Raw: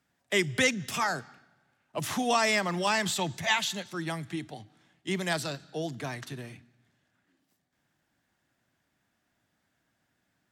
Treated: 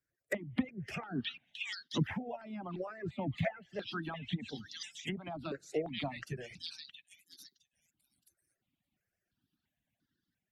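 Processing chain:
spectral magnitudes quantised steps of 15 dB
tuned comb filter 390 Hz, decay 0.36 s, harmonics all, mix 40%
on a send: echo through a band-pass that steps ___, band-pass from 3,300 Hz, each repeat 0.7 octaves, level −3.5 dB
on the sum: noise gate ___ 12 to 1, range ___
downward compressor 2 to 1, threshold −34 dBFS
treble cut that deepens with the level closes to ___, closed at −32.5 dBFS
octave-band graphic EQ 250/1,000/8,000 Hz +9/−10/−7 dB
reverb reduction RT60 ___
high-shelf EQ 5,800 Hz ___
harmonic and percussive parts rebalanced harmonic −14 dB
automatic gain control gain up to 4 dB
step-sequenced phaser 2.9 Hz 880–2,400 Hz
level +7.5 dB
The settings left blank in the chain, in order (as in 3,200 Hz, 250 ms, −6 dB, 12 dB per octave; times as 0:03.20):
666 ms, −57 dBFS, −8 dB, 750 Hz, 0.85 s, +5 dB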